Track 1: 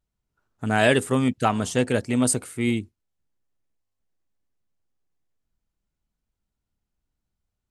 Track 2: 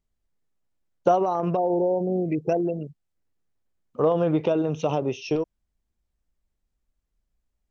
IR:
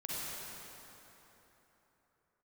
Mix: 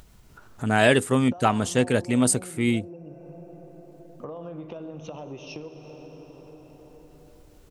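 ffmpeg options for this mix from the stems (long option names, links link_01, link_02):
-filter_complex "[0:a]volume=0.5dB[link_01];[1:a]bandreject=frequency=430:width=12,acompressor=threshold=-26dB:ratio=6,adelay=250,volume=-14.5dB,asplit=2[link_02][link_03];[link_03]volume=-10dB[link_04];[2:a]atrim=start_sample=2205[link_05];[link_04][link_05]afir=irnorm=-1:irlink=0[link_06];[link_01][link_02][link_06]amix=inputs=3:normalize=0,acompressor=mode=upward:threshold=-30dB:ratio=2.5"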